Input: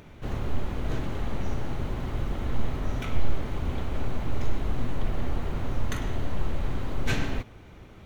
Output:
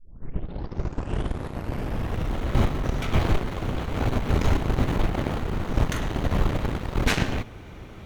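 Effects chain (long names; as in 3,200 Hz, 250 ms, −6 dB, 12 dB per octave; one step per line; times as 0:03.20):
turntable start at the beginning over 2.40 s
harmonic generator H 7 −7 dB, 8 −20 dB, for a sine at −10 dBFS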